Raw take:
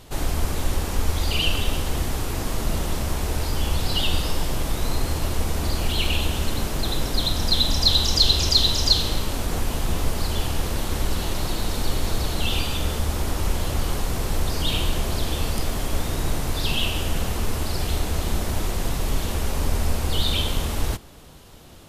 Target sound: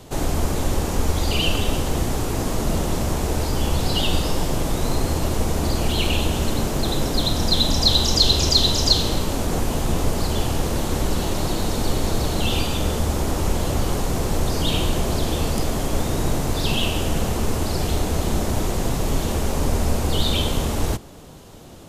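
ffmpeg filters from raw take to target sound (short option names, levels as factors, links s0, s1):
-filter_complex "[0:a]equalizer=f=6900:w=1.9:g=4,acrossover=split=100|940|3400[s0][s1][s2][s3];[s1]acontrast=63[s4];[s0][s4][s2][s3]amix=inputs=4:normalize=0"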